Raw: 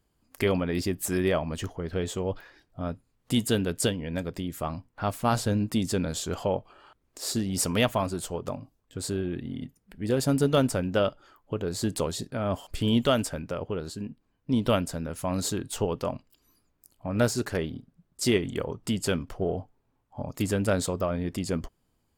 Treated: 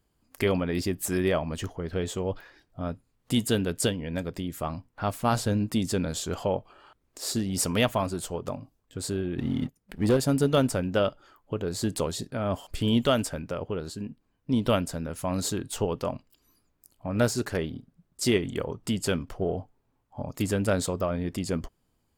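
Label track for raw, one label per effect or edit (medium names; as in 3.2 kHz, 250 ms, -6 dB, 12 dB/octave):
9.380000	10.170000	waveshaping leveller passes 2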